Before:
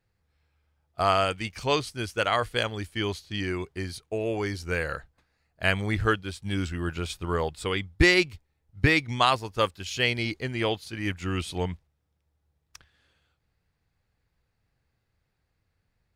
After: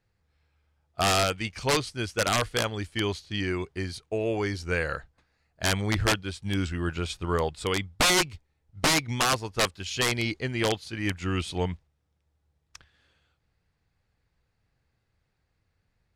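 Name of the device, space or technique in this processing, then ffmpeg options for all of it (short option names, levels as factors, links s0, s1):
overflowing digital effects unit: -af "aeval=exprs='(mod(6.31*val(0)+1,2)-1)/6.31':c=same,lowpass=9200,volume=1.12"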